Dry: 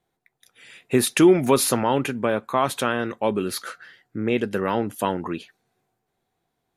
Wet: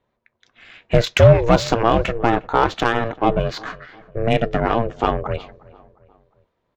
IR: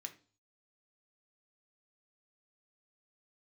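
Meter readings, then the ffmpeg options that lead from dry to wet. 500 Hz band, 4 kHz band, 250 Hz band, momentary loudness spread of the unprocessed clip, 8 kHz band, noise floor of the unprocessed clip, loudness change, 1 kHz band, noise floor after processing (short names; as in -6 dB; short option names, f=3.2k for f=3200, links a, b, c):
+4.5 dB, +3.0 dB, -1.0 dB, 14 LU, -9.5 dB, -78 dBFS, +4.0 dB, +6.0 dB, -73 dBFS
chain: -filter_complex "[0:a]aresample=16000,volume=9.5dB,asoftclip=hard,volume=-9.5dB,aresample=44100,aeval=exprs='val(0)*sin(2*PI*230*n/s)':c=same,asplit=2[a][b];[b]adelay=356,lowpass=f=2.3k:p=1,volume=-22dB,asplit=2[c][d];[d]adelay=356,lowpass=f=2.3k:p=1,volume=0.48,asplit=2[e][f];[f]adelay=356,lowpass=f=2.3k:p=1,volume=0.48[g];[a][c][e][g]amix=inputs=4:normalize=0,adynamicsmooth=sensitivity=1.5:basefreq=3.8k,volume=8dB"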